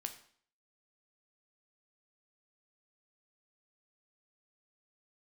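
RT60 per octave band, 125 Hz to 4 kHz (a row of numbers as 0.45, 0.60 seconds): 0.55, 0.55, 0.55, 0.55, 0.50, 0.50 seconds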